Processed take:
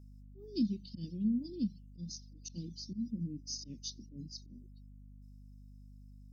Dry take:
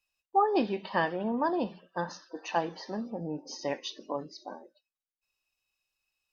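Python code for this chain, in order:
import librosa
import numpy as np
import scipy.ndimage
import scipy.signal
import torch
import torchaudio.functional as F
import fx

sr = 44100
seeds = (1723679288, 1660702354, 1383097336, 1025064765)

y = fx.auto_swell(x, sr, attack_ms=106.0)
y = scipy.signal.sosfilt(scipy.signal.ellip(3, 1.0, 60, [230.0, 5100.0], 'bandstop', fs=sr, output='sos'), y)
y = fx.dereverb_blind(y, sr, rt60_s=0.53)
y = fx.add_hum(y, sr, base_hz=50, snr_db=13)
y = y * librosa.db_to_amplitude(3.5)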